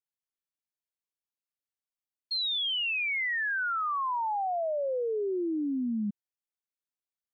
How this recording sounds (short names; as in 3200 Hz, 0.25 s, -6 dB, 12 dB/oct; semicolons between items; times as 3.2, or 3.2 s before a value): noise floor -95 dBFS; spectral tilt 0.0 dB/oct